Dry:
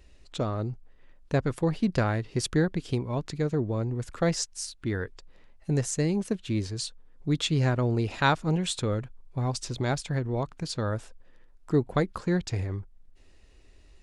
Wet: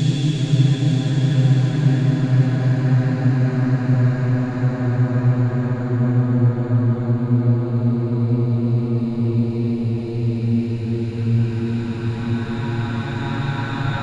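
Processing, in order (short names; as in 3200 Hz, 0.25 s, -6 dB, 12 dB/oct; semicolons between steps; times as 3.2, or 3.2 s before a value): Paulstretch 22×, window 0.50 s, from 7.53; resonant low shelf 320 Hz +7.5 dB, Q 1.5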